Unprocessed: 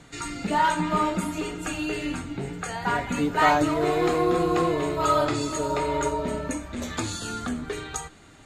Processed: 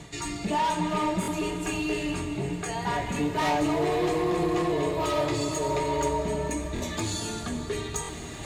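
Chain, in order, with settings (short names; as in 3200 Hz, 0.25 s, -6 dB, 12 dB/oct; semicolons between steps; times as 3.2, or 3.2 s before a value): soft clip -22.5 dBFS, distortion -10 dB; notch comb 260 Hz; reverse; upward compressor, threshold -30 dBFS; reverse; bell 1400 Hz -12 dB 0.26 oct; on a send at -9 dB: reverb RT60 4.1 s, pre-delay 77 ms; on the sum: stuck buffer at 1.21/6.74/8.02, samples 1024, times 2; gain +2 dB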